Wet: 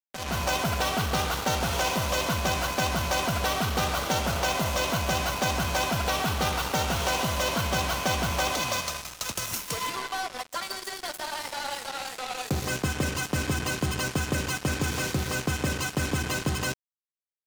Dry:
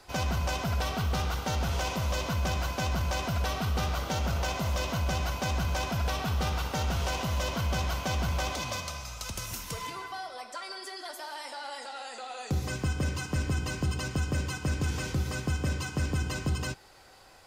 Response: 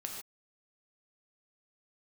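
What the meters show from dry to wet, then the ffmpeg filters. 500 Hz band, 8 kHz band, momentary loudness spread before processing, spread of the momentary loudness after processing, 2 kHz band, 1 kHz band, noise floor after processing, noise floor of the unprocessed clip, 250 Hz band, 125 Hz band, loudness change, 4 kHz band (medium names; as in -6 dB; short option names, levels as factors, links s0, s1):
+6.0 dB, +7.5 dB, 9 LU, 7 LU, +6.5 dB, +6.0 dB, -75 dBFS, -47 dBFS, +3.5 dB, -1.0 dB, +4.0 dB, +6.5 dB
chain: -af "highpass=f=200:p=1,bandreject=f=5000:w=19,dynaudnorm=f=180:g=3:m=5.01,acrusher=bits=3:mix=0:aa=0.5,volume=0.422"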